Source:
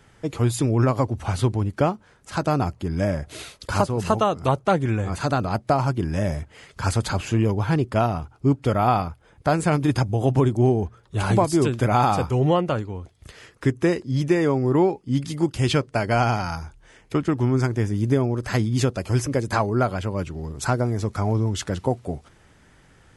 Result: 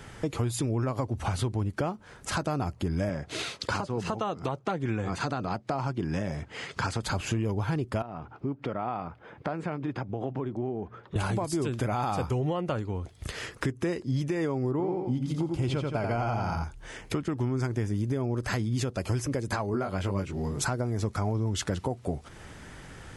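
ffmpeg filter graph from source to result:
ffmpeg -i in.wav -filter_complex "[0:a]asettb=1/sr,asplit=3[link_01][link_02][link_03];[link_01]atrim=end=3.094[link_04];[link_02]atrim=start=3.09:end=7.03,asetpts=PTS-STARTPTS,afade=type=in:duration=0.004:curve=qsin,afade=type=out:start_time=3.936:duration=0.004:curve=qsin,highpass=120,lowpass=6600,bandreject=frequency=600:width=14[link_05];[link_03]atrim=start=7.026[link_06];[link_04][link_05]acrossfade=duration=0.004:curve1=hsin:curve2=qsin[link_07];[link_07][link_06]acrossfade=duration=0.004:curve1=qsin:curve2=hsin,asettb=1/sr,asplit=3[link_08][link_09][link_10];[link_08]atrim=end=8.024[link_11];[link_09]atrim=start=8.02:end=11.16,asetpts=PTS-STARTPTS,afade=type=in:duration=0.004:curve=qsin,afade=type=out:start_time=3.136:duration=0.004:curve=qsin,acompressor=threshold=-39dB:ratio=2:attack=3.2:release=140:knee=1:detection=peak,highpass=160,lowpass=2500[link_12];[link_10]atrim=start=11.156[link_13];[link_11][link_12]acrossfade=duration=0.004:curve1=hsin:curve2=qsin[link_14];[link_14][link_13]acrossfade=duration=0.004:curve1=qsin:curve2=hsin,asettb=1/sr,asplit=3[link_15][link_16][link_17];[link_15]atrim=end=14.714[link_18];[link_16]atrim=start=14.71:end=16.64,asetpts=PTS-STARTPTS,afade=type=in:duration=0.004:curve=qsin,afade=type=out:start_time=1.926:duration=0.004:curve=qsin,highshelf=frequency=2400:gain=-10,bandreject=frequency=1800:width=8.2,aecho=1:1:86|172|258|344:0.531|0.196|0.0727|0.0269,atrim=end_sample=85113[link_19];[link_17]atrim=start=16.636[link_20];[link_18][link_19]acrossfade=duration=0.004:curve1=hsin:curve2=qsin[link_21];[link_21][link_20]acrossfade=duration=0.004:curve1=qsin:curve2=hsin,asettb=1/sr,asplit=3[link_22][link_23][link_24];[link_22]atrim=end=19.714[link_25];[link_23]atrim=start=19.71:end=20.63,asetpts=PTS-STARTPTS,afade=type=in:duration=0.004:curve=qsin,afade=type=out:start_time=0.916:duration=0.004:curve=qsin,highpass=frequency=52:poles=1,equalizer=frequency=2100:width=7.8:gain=3,asplit=2[link_26][link_27];[link_27]adelay=21,volume=-3dB[link_28];[link_26][link_28]amix=inputs=2:normalize=0,atrim=end_sample=40572[link_29];[link_24]atrim=start=20.626[link_30];[link_25][link_29]acrossfade=duration=0.004:curve1=hsin:curve2=qsin[link_31];[link_31][link_30]acrossfade=duration=0.004:curve1=qsin:curve2=hsin,alimiter=limit=-16dB:level=0:latency=1:release=245,acompressor=threshold=-39dB:ratio=3,volume=8.5dB" out.wav

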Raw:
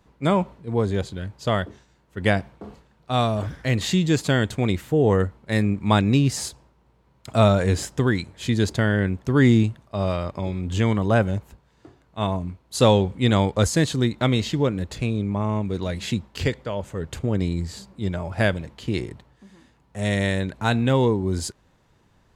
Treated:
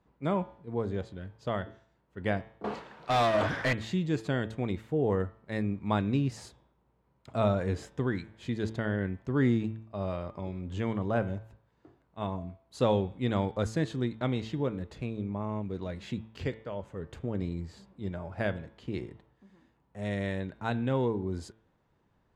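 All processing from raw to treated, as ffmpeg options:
ffmpeg -i in.wav -filter_complex "[0:a]asettb=1/sr,asplit=3[link_01][link_02][link_03];[link_01]atrim=end=2.644[link_04];[link_02]atrim=start=2.64:end=3.73,asetpts=PTS-STARTPTS,afade=type=in:duration=0.004:curve=qsin,afade=type=out:start_time=1.086:duration=0.004:curve=qsin,asplit=2[link_05][link_06];[link_06]highpass=frequency=720:poles=1,volume=31dB,asoftclip=type=tanh:threshold=-9.5dB[link_07];[link_05][link_07]amix=inputs=2:normalize=0,lowpass=frequency=2500:poles=1,volume=-6dB,highshelf=frequency=2500:gain=8.5[link_08];[link_03]atrim=start=3.726[link_09];[link_04][link_08]acrossfade=duration=0.004:curve1=hsin:curve2=qsin[link_10];[link_10][link_09]acrossfade=duration=0.004:curve1=qsin:curve2=hsin,lowpass=frequency=1700:poles=1,lowshelf=frequency=100:gain=-5.5,bandreject=frequency=110.9:width_type=h:width=4,bandreject=frequency=221.8:width_type=h:width=4,bandreject=frequency=332.7:width_type=h:width=4,bandreject=frequency=443.6:width_type=h:width=4,bandreject=frequency=554.5:width_type=h:width=4,bandreject=frequency=665.4:width_type=h:width=4,bandreject=frequency=776.3:width_type=h:width=4,bandreject=frequency=887.2:width_type=h:width=4,bandreject=frequency=998.1:width_type=h:width=4,bandreject=frequency=1109:width_type=h:width=4,bandreject=frequency=1219.9:width_type=h:width=4,bandreject=frequency=1330.8:width_type=h:width=4,bandreject=frequency=1441.7:width_type=h:width=4,bandreject=frequency=1552.6:width_type=h:width=4,bandreject=frequency=1663.5:width_type=h:width=4,bandreject=frequency=1774.4:width_type=h:width=4,bandreject=frequency=1885.3:width_type=h:width=4,bandreject=frequency=1996.2:width_type=h:width=4,bandreject=frequency=2107.1:width_type=h:width=4,bandreject=frequency=2218:width_type=h:width=4,bandreject=frequency=2328.9:width_type=h:width=4,bandreject=frequency=2439.8:width_type=h:width=4,bandreject=frequency=2550.7:width_type=h:width=4,bandreject=frequency=2661.6:width_type=h:width=4,bandreject=frequency=2772.5:width_type=h:width=4,bandreject=frequency=2883.4:width_type=h:width=4,bandreject=frequency=2994.3:width_type=h:width=4,bandreject=frequency=3105.2:width_type=h:width=4,bandreject=frequency=3216.1:width_type=h:width=4,bandreject=frequency=3327:width_type=h:width=4,bandreject=frequency=3437.9:width_type=h:width=4,bandreject=frequency=3548.8:width_type=h:width=4,bandreject=frequency=3659.7:width_type=h:width=4,bandreject=frequency=3770.6:width_type=h:width=4,volume=-8dB" out.wav

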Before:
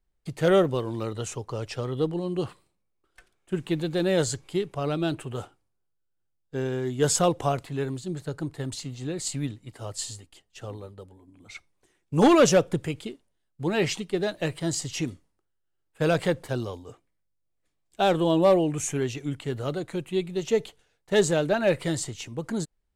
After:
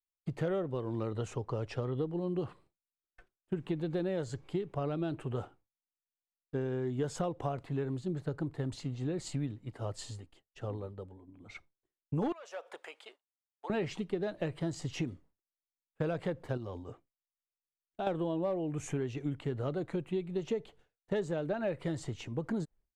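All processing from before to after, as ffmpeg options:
ffmpeg -i in.wav -filter_complex "[0:a]asettb=1/sr,asplit=3[link_01][link_02][link_03];[link_01]atrim=end=12.324[link_04];[link_02]atrim=start=12.32:end=13.7,asetpts=PTS-STARTPTS,afade=type=in:duration=0.004:curve=qsin,afade=type=out:start_time=1.376:duration=0.004:curve=qsin,highpass=frequency=670:width=0.5412,highpass=frequency=670:width=1.3066,acompressor=threshold=-36dB:ratio=5:attack=3.2:release=140:knee=1:detection=peak[link_05];[link_03]atrim=start=13.696[link_06];[link_04][link_05]acrossfade=duration=0.004:curve1=hsin:curve2=qsin[link_07];[link_07][link_06]acrossfade=duration=0.004:curve1=qsin:curve2=hsin,asettb=1/sr,asplit=3[link_08][link_09][link_10];[link_08]atrim=end=16.574[link_11];[link_09]atrim=start=16.57:end=18.07,asetpts=PTS-STARTPTS,afade=type=in:duration=0.004:curve=qsin,afade=type=out:start_time=1.496:duration=0.004:curve=qsin,bandreject=frequency=450:width=13,acompressor=threshold=-36dB:ratio=2.5:attack=3.2:release=140:knee=1:detection=peak[link_12];[link_10]atrim=start=18.066[link_13];[link_11][link_12]acrossfade=duration=0.004:curve1=hsin:curve2=qsin[link_14];[link_14][link_13]acrossfade=duration=0.004:curve1=qsin:curve2=hsin,lowpass=frequency=1300:poles=1,agate=range=-33dB:threshold=-52dB:ratio=3:detection=peak,acompressor=threshold=-30dB:ratio=10" out.wav

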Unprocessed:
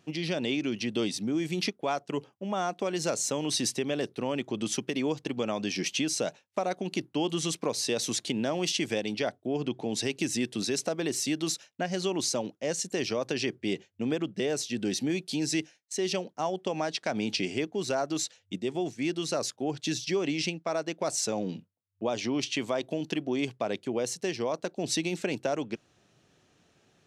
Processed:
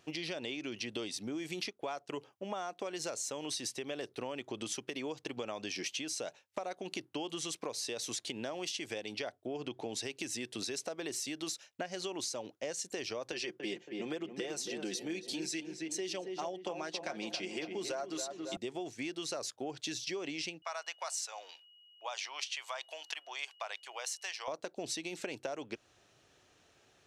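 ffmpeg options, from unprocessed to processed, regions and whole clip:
ffmpeg -i in.wav -filter_complex "[0:a]asettb=1/sr,asplit=3[link_01][link_02][link_03];[link_01]atrim=end=13.324[link_04];[link_02]atrim=start=13.32:end=18.57,asetpts=PTS-STARTPTS,afade=type=in:duration=0.004:curve=qsin,afade=type=out:start_time=5.246:duration=0.004:curve=qsin,highpass=frequency=150:width=0.5412,highpass=frequency=150:width=1.3066,aecho=1:1:5.7:0.54,atrim=end_sample=231525,asplit=2[link_05][link_06];[link_06]adelay=276,lowpass=frequency=1500:poles=1,volume=-7dB,asplit=2[link_07][link_08];[link_08]adelay=276,lowpass=frequency=1500:poles=1,volume=0.49,asplit=2[link_09][link_10];[link_10]adelay=276,lowpass=frequency=1500:poles=1,volume=0.49,asplit=2[link_11][link_12];[link_12]adelay=276,lowpass=frequency=1500:poles=1,volume=0.49,asplit=2[link_13][link_14];[link_14]adelay=276,lowpass=frequency=1500:poles=1,volume=0.49,asplit=2[link_15][link_16];[link_16]adelay=276,lowpass=frequency=1500:poles=1,volume=0.49[link_17];[link_05][link_07][link_09][link_11][link_13][link_15][link_17]amix=inputs=7:normalize=0,atrim=end_sample=231525[link_18];[link_03]atrim=start=18.566[link_19];[link_04][link_18]acrossfade=duration=0.004:curve1=hsin:curve2=qsin[link_20];[link_20][link_19]acrossfade=duration=0.004:curve1=qsin:curve2=hsin,asettb=1/sr,asplit=3[link_21][link_22][link_23];[link_21]atrim=end=20.624[link_24];[link_22]atrim=start=20.62:end=24.48,asetpts=PTS-STARTPTS,afade=type=in:duration=0.004:curve=qsin,afade=type=out:start_time=3.856:duration=0.004:curve=qsin,highpass=frequency=830:width=0.5412,highpass=frequency=830:width=1.3066,aeval=exprs='val(0)+0.001*sin(2*PI*2900*n/s)':channel_layout=same[link_25];[link_23]atrim=start=24.476[link_26];[link_24][link_25]acrossfade=duration=0.004:curve1=hsin:curve2=qsin[link_27];[link_27][link_26]acrossfade=duration=0.004:curve1=qsin:curve2=hsin,equalizer=frequency=180:width_type=o:width=1.4:gain=-11,acompressor=threshold=-37dB:ratio=6,volume=1dB" out.wav

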